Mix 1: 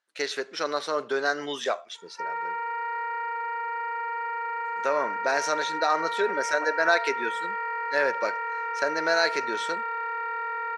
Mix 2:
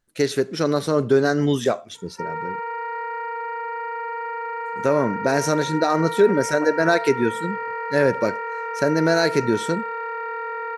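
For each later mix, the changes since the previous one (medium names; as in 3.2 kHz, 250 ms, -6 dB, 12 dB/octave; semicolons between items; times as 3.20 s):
master: remove band-pass 770–5300 Hz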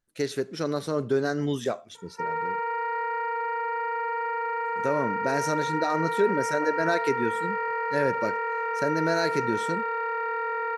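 speech -7.5 dB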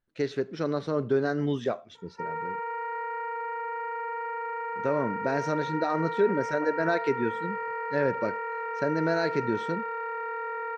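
background -3.5 dB; master: add distance through air 180 m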